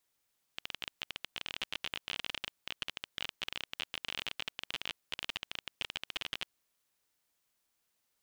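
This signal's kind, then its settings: random clicks 28/s -19.5 dBFS 5.89 s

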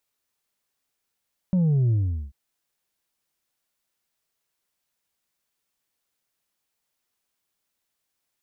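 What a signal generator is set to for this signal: sub drop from 190 Hz, over 0.79 s, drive 3 dB, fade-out 0.41 s, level -18 dB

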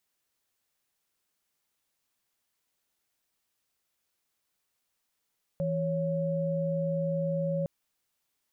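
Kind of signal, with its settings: chord E3/C#5 sine, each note -29.5 dBFS 2.06 s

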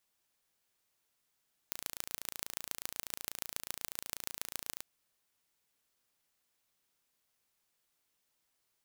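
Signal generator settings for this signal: pulse train 28.2/s, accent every 4, -8 dBFS 3.12 s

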